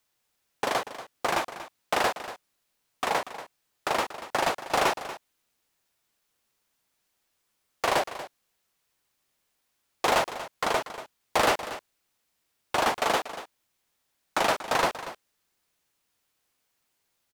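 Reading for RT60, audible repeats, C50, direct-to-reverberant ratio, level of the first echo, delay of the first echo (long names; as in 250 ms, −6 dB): no reverb audible, 1, no reverb audible, no reverb audible, −13.5 dB, 236 ms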